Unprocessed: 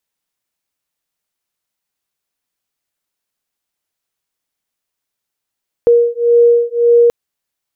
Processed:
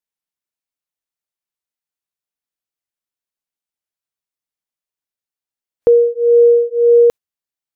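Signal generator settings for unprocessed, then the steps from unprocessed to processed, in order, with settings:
two tones that beat 472 Hz, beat 1.8 Hz, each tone −10.5 dBFS 1.23 s
noise reduction from a noise print of the clip's start 12 dB

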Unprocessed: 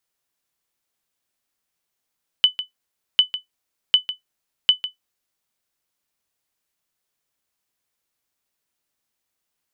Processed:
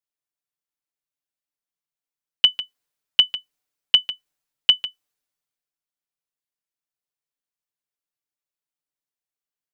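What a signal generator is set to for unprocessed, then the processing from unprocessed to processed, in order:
ping with an echo 3,000 Hz, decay 0.13 s, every 0.75 s, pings 4, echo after 0.15 s, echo −13 dB −4.5 dBFS
comb filter 6.8 ms, depth 71%
multiband upward and downward expander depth 40%

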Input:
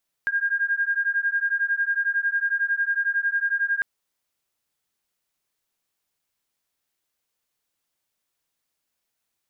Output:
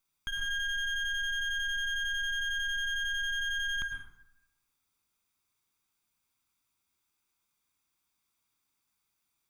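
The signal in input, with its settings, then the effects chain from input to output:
two tones that beat 1,610 Hz, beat 11 Hz, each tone −24 dBFS 3.55 s
lower of the sound and its delayed copy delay 0.83 ms
brickwall limiter −28 dBFS
dense smooth reverb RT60 0.89 s, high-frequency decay 0.5×, pre-delay 90 ms, DRR 4 dB

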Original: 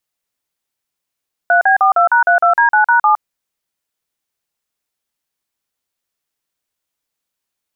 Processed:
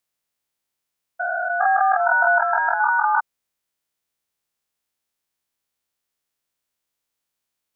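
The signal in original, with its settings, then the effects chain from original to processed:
touch tones "3B42#32D9#7", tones 112 ms, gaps 42 ms, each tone −10.5 dBFS
spectrum averaged block by block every 400 ms

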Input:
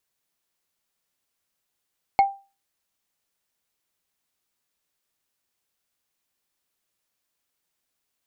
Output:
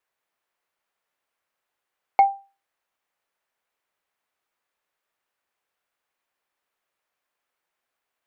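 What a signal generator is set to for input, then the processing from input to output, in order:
struck wood, lowest mode 790 Hz, decay 0.31 s, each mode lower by 11 dB, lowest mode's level −10 dB
three-way crossover with the lows and the highs turned down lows −13 dB, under 420 Hz, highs −14 dB, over 2,500 Hz
in parallel at −1 dB: brickwall limiter −17 dBFS

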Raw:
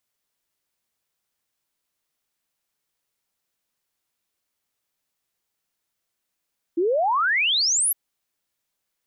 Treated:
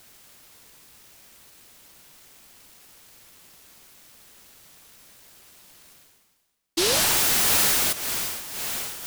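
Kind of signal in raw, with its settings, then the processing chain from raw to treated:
exponential sine sweep 320 Hz → 12,000 Hz 1.16 s −18 dBFS
echo through a band-pass that steps 398 ms, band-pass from 1,200 Hz, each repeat 0.7 octaves, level −3.5 dB
reversed playback
upward compression, threshold −26 dBFS
reversed playback
short delay modulated by noise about 4,200 Hz, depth 0.42 ms

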